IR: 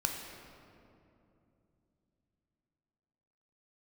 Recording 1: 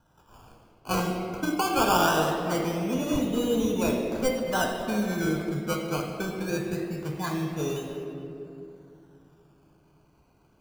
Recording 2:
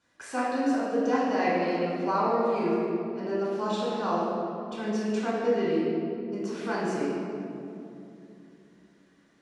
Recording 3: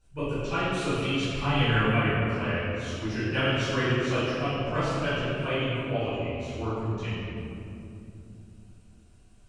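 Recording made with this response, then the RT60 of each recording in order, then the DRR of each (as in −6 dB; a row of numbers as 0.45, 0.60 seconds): 1; 2.8, 2.8, 2.8 seconds; 1.0, −7.5, −17.0 decibels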